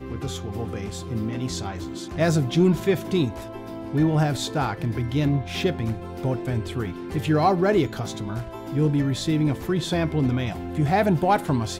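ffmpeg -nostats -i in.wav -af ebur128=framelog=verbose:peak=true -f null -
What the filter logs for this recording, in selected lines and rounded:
Integrated loudness:
  I:         -24.4 LUFS
  Threshold: -34.5 LUFS
Loudness range:
  LRA:         2.0 LU
  Threshold: -44.4 LUFS
  LRA low:   -25.3 LUFS
  LRA high:  -23.4 LUFS
True peak:
  Peak:       -9.5 dBFS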